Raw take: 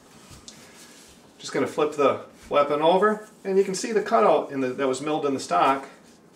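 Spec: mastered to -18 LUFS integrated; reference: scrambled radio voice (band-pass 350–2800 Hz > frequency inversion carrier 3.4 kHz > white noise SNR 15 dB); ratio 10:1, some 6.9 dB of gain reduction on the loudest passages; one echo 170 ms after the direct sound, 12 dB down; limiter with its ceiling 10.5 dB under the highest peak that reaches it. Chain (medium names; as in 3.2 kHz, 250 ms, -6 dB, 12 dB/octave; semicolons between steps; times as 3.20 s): compression 10:1, threshold -21 dBFS; peak limiter -23 dBFS; band-pass 350–2800 Hz; delay 170 ms -12 dB; frequency inversion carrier 3.4 kHz; white noise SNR 15 dB; trim +13 dB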